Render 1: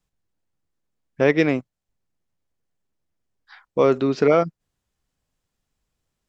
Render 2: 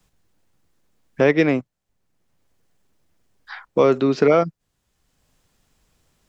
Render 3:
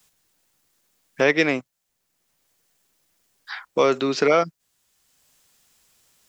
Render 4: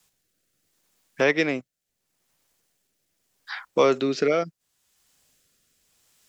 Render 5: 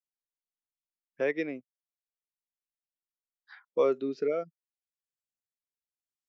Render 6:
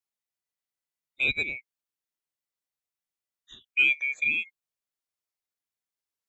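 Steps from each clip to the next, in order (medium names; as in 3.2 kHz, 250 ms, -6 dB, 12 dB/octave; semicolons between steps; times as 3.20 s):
three bands compressed up and down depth 40%; trim +2 dB
tilt EQ +3 dB/octave
rotary cabinet horn 0.75 Hz
spectral contrast expander 1.5:1; trim -8 dB
split-band scrambler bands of 2 kHz; trim +2.5 dB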